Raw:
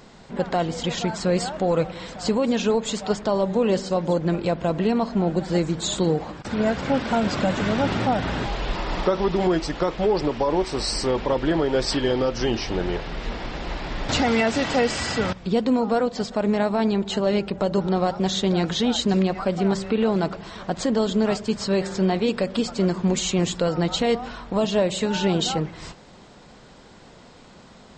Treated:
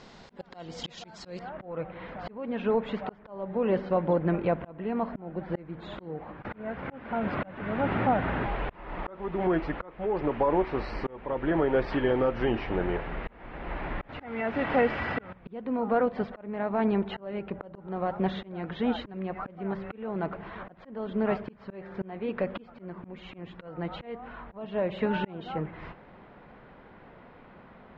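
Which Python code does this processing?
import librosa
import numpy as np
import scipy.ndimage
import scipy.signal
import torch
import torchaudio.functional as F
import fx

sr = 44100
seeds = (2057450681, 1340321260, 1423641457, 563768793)

y = fx.lowpass(x, sr, hz=fx.steps((0.0, 6200.0), (1.39, 2300.0)), slope=24)
y = fx.auto_swell(y, sr, attack_ms=530.0)
y = fx.low_shelf(y, sr, hz=480.0, db=-3.5)
y = y * librosa.db_to_amplitude(-1.0)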